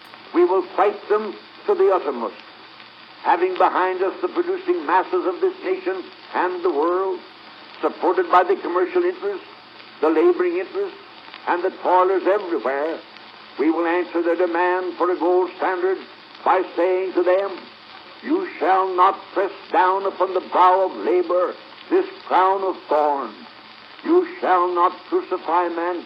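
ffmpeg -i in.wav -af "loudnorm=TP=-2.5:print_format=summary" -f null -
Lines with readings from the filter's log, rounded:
Input Integrated:    -20.5 LUFS
Input True Peak:      -4.3 dBTP
Input LRA:             2.6 LU
Input Threshold:     -31.2 LUFS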